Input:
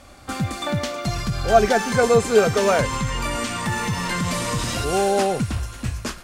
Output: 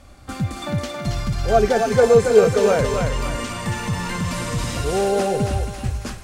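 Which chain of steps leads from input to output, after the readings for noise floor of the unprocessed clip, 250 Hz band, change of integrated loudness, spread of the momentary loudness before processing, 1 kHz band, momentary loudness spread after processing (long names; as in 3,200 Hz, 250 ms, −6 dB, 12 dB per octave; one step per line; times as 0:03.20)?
−42 dBFS, +0.5 dB, +1.0 dB, 11 LU, −2.0 dB, 12 LU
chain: low-shelf EQ 190 Hz +9 dB
feedback echo with a high-pass in the loop 275 ms, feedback 49%, high-pass 420 Hz, level −4 dB
dynamic equaliser 470 Hz, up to +7 dB, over −30 dBFS, Q 2.5
level −4.5 dB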